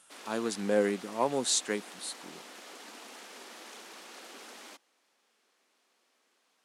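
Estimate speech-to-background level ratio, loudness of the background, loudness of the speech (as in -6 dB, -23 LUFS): 16.0 dB, -47.0 LUFS, -31.0 LUFS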